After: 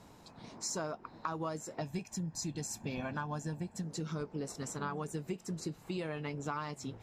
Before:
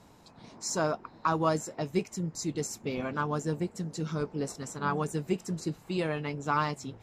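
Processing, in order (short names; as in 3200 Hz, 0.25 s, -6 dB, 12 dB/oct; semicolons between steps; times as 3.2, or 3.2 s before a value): 1.81–3.83 comb 1.2 ms, depth 56%; compressor 6:1, threshold -35 dBFS, peak gain reduction 13 dB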